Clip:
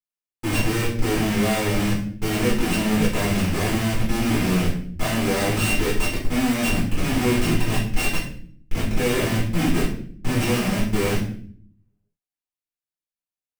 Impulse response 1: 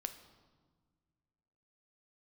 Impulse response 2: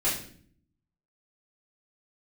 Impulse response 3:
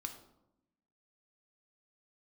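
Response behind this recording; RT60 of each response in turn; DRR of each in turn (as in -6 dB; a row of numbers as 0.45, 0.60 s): 2; 1.6, 0.55, 0.85 s; 8.0, -8.0, 5.0 dB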